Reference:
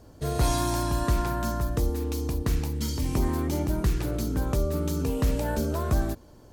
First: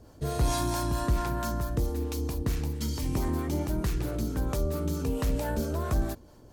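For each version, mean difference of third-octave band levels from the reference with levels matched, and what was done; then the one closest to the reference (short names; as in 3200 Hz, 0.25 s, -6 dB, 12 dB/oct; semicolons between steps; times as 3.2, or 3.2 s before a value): 1.5 dB: harmonic tremolo 4.5 Hz, depth 50%, crossover 500 Hz; in parallel at -5.5 dB: soft clip -25.5 dBFS, distortion -12 dB; on the sum: gain -3 dB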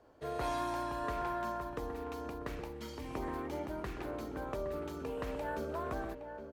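6.5 dB: three-band isolator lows -16 dB, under 350 Hz, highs -16 dB, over 3000 Hz; outdoor echo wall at 140 m, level -8 dB; gain -5 dB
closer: first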